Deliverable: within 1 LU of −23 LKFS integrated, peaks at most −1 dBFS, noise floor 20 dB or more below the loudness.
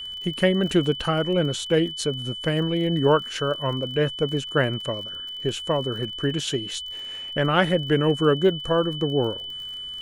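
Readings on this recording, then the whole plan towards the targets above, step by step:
crackle rate 40 per second; interfering tone 3,000 Hz; level of the tone −32 dBFS; integrated loudness −24.0 LKFS; sample peak −4.0 dBFS; target loudness −23.0 LKFS
→ click removal
notch filter 3,000 Hz, Q 30
level +1 dB

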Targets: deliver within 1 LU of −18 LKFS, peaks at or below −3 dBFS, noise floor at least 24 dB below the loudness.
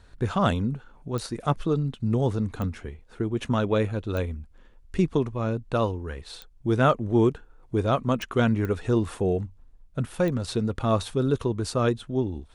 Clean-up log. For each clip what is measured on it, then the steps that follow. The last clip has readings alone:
number of clicks 7; integrated loudness −26.5 LKFS; sample peak −7.5 dBFS; target loudness −18.0 LKFS
→ click removal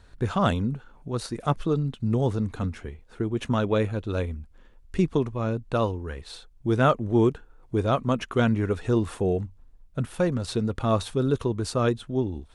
number of clicks 0; integrated loudness −26.5 LKFS; sample peak −7.5 dBFS; target loudness −18.0 LKFS
→ level +8.5 dB
brickwall limiter −3 dBFS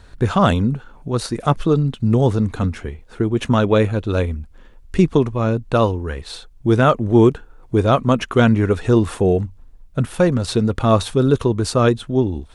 integrated loudness −18.0 LKFS; sample peak −3.0 dBFS; background noise floor −45 dBFS

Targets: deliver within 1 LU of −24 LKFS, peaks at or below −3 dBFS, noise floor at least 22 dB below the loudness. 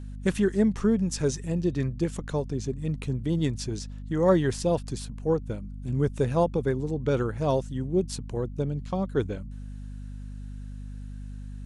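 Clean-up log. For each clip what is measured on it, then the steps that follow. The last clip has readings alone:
mains hum 50 Hz; hum harmonics up to 250 Hz; level of the hum −36 dBFS; integrated loudness −28.0 LKFS; sample peak −9.5 dBFS; target loudness −24.0 LKFS
→ mains-hum notches 50/100/150/200/250 Hz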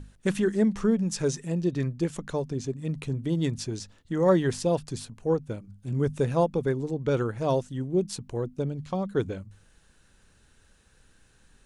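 mains hum none found; integrated loudness −28.0 LKFS; sample peak −10.5 dBFS; target loudness −24.0 LKFS
→ level +4 dB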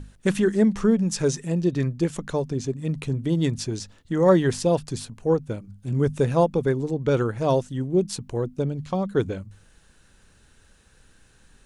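integrated loudness −24.0 LKFS; sample peak −6.5 dBFS; background noise floor −57 dBFS

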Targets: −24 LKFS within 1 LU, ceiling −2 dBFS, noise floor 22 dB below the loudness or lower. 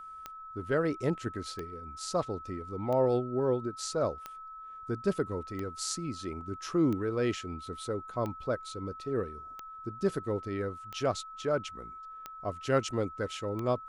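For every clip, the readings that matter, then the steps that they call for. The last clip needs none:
number of clicks 11; interfering tone 1,300 Hz; level of the tone −43 dBFS; integrated loudness −33.5 LKFS; sample peak −15.5 dBFS; target loudness −24.0 LKFS
→ click removal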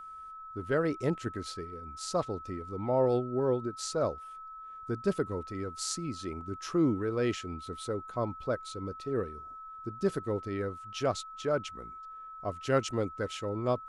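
number of clicks 0; interfering tone 1,300 Hz; level of the tone −43 dBFS
→ notch filter 1,300 Hz, Q 30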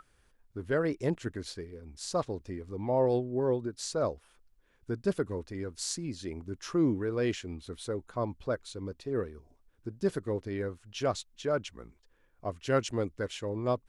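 interfering tone none found; integrated loudness −33.5 LKFS; sample peak −15.0 dBFS; target loudness −24.0 LKFS
→ level +9.5 dB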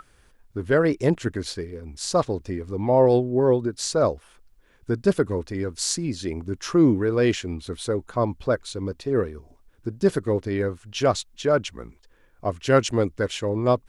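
integrated loudness −24.0 LKFS; sample peak −5.5 dBFS; background noise floor −59 dBFS

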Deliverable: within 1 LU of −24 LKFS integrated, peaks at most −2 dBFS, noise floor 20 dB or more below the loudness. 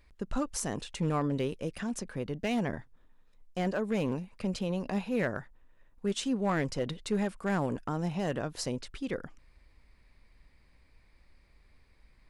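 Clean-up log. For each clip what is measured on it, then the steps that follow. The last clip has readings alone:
share of clipped samples 0.5%; peaks flattened at −22.0 dBFS; integrated loudness −33.5 LKFS; sample peak −22.0 dBFS; target loudness −24.0 LKFS
→ clipped peaks rebuilt −22 dBFS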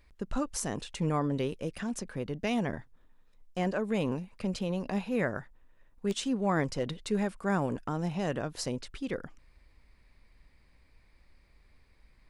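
share of clipped samples 0.0%; integrated loudness −33.0 LKFS; sample peak −16.0 dBFS; target loudness −24.0 LKFS
→ level +9 dB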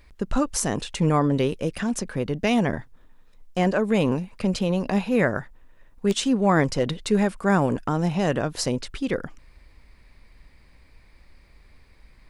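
integrated loudness −24.0 LKFS; sample peak −7.0 dBFS; background noise floor −54 dBFS

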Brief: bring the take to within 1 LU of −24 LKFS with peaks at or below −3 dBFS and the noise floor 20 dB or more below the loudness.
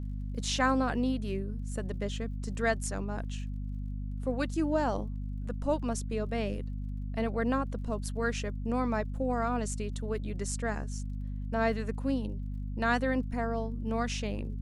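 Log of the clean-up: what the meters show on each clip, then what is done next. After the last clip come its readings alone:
crackle rate 28 per second; mains hum 50 Hz; hum harmonics up to 250 Hz; level of the hum −33 dBFS; integrated loudness −33.0 LKFS; sample peak −15.0 dBFS; target loudness −24.0 LKFS
→ click removal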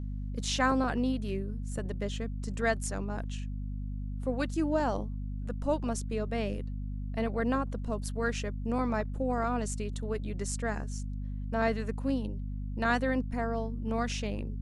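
crackle rate 0.068 per second; mains hum 50 Hz; hum harmonics up to 250 Hz; level of the hum −33 dBFS
→ hum removal 50 Hz, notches 5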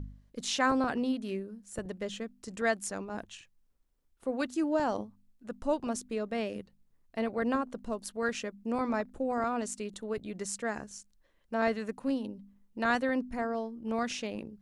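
mains hum none found; integrated loudness −33.5 LKFS; sample peak −14.5 dBFS; target loudness −24.0 LKFS
→ level +9.5 dB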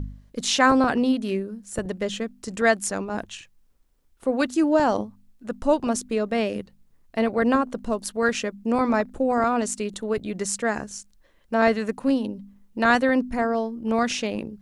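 integrated loudness −24.0 LKFS; sample peak −5.0 dBFS; background noise floor −60 dBFS

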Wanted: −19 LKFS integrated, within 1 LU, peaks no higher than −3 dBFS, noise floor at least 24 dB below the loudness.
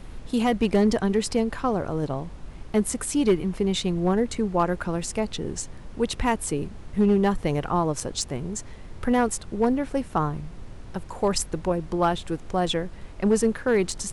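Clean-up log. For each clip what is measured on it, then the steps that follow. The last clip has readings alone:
share of clipped samples 0.4%; peaks flattened at −13.0 dBFS; background noise floor −41 dBFS; target noise floor −50 dBFS; integrated loudness −25.5 LKFS; sample peak −13.0 dBFS; target loudness −19.0 LKFS
→ clipped peaks rebuilt −13 dBFS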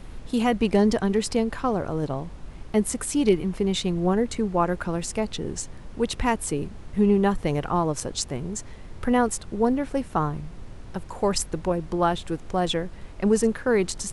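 share of clipped samples 0.0%; background noise floor −41 dBFS; target noise floor −49 dBFS
→ noise reduction from a noise print 8 dB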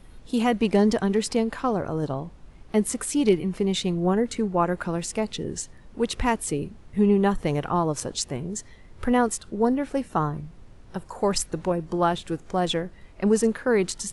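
background noise floor −49 dBFS; integrated loudness −25.0 LKFS; sample peak −8.0 dBFS; target loudness −19.0 LKFS
→ level +6 dB
brickwall limiter −3 dBFS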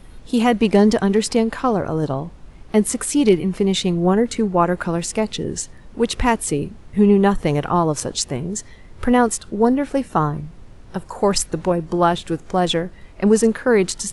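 integrated loudness −19.0 LKFS; sample peak −3.0 dBFS; background noise floor −43 dBFS

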